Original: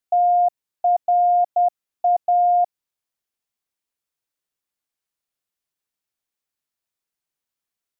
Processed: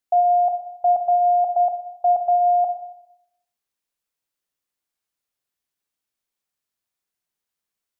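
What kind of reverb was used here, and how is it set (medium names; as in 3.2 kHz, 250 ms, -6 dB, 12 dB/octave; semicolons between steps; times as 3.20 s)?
Schroeder reverb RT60 0.78 s, combs from 31 ms, DRR 5.5 dB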